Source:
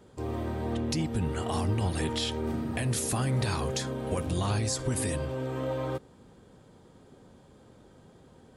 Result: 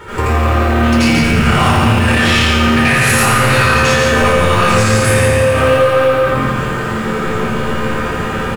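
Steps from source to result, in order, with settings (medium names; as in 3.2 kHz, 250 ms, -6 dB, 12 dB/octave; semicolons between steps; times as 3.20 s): in parallel at -1 dB: short-mantissa float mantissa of 2-bit; on the sum: high-order bell 1.7 kHz +12.5 dB; chord resonator D2 minor, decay 0.35 s; delay 141 ms -4 dB; reverberation RT60 0.70 s, pre-delay 77 ms, DRR -11 dB; compression, threshold -20 dBFS, peak gain reduction 8.5 dB; saturation -20 dBFS, distortion -15 dB; loudness maximiser +30 dB; bit-crushed delay 85 ms, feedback 80%, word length 6-bit, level -8.5 dB; trim -5.5 dB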